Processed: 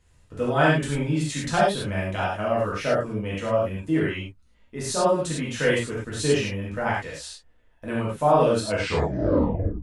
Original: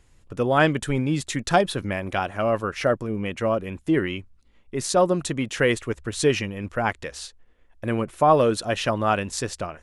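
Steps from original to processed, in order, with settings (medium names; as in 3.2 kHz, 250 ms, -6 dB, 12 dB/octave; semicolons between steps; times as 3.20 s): tape stop on the ending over 1.23 s; gated-style reverb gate 130 ms flat, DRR -7 dB; trim -8.5 dB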